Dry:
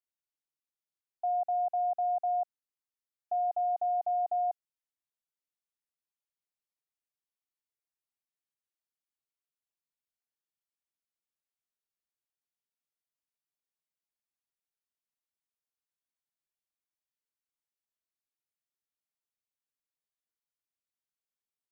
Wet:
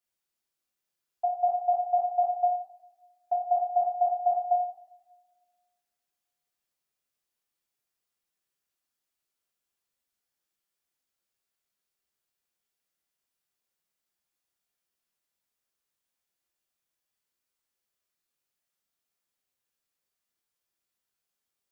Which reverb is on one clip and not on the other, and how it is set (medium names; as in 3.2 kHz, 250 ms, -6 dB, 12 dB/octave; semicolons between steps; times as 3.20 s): two-slope reverb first 0.63 s, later 1.9 s, from -25 dB, DRR -4 dB; trim +3 dB